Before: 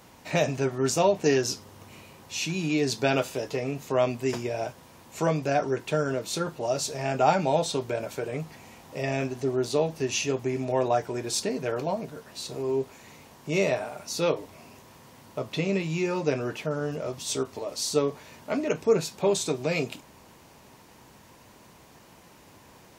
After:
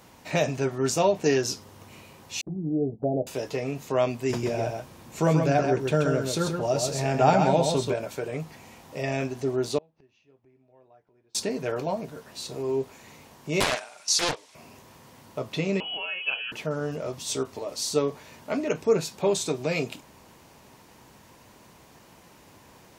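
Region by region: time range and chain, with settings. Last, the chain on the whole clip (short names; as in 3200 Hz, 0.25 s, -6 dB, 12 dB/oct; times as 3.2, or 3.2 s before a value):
2.41–3.27 steep low-pass 760 Hz 72 dB/oct + expander -38 dBFS + envelope flanger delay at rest 9.1 ms, full sweep at -23.5 dBFS
4.3–7.94 low shelf 270 Hz +7 dB + echo 0.131 s -5 dB
9.78–11.35 air absorption 240 m + flipped gate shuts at -29 dBFS, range -32 dB
13.6–14.55 weighting filter ITU-R 468 + gate -34 dBFS, range -8 dB + Doppler distortion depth 0.74 ms
15.8–16.52 fixed phaser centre 1100 Hz, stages 6 + inverted band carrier 3100 Hz
whole clip: dry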